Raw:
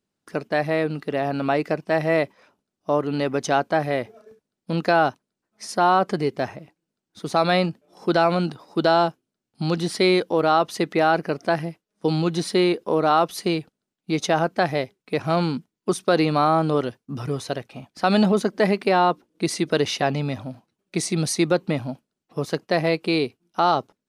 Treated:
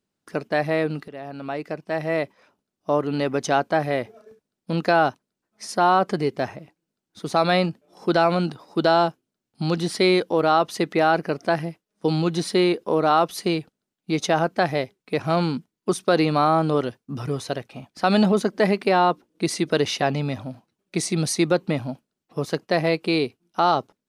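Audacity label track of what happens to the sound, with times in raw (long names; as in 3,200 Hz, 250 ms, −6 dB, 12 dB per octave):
1.080000	2.900000	fade in, from −14 dB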